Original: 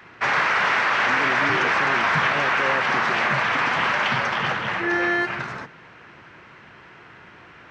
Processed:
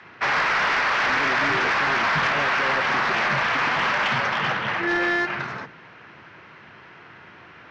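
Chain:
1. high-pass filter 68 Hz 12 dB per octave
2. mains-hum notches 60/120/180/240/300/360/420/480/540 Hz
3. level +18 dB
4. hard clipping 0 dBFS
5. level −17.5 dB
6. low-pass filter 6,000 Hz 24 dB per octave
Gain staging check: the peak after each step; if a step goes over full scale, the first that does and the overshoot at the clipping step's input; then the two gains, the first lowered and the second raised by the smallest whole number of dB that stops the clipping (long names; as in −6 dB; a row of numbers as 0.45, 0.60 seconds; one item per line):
−8.5, −8.5, +9.5, 0.0, −17.5, −16.0 dBFS
step 3, 9.5 dB
step 3 +8 dB, step 5 −7.5 dB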